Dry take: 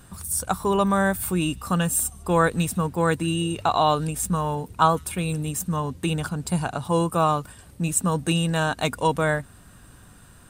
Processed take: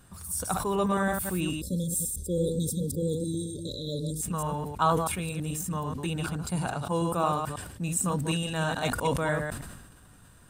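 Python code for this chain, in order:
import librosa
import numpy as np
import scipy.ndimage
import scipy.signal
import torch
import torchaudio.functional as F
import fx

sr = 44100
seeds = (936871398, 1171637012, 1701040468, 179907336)

y = fx.reverse_delay(x, sr, ms=108, wet_db=-5.0)
y = fx.spec_erase(y, sr, start_s=1.61, length_s=2.61, low_hz=600.0, high_hz=3300.0)
y = fx.sustainer(y, sr, db_per_s=48.0)
y = y * librosa.db_to_amplitude(-7.0)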